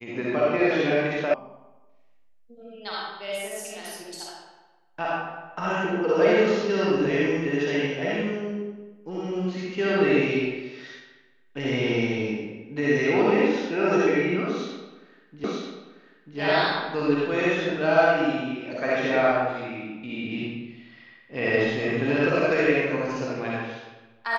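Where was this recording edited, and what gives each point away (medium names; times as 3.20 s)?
1.34 s: sound stops dead
15.44 s: repeat of the last 0.94 s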